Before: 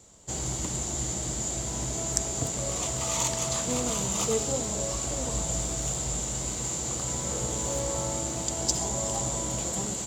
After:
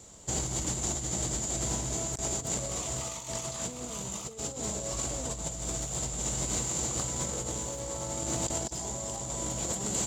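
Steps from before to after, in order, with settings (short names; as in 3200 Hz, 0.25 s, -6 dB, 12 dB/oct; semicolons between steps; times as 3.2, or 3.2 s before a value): negative-ratio compressor -33 dBFS, ratio -0.5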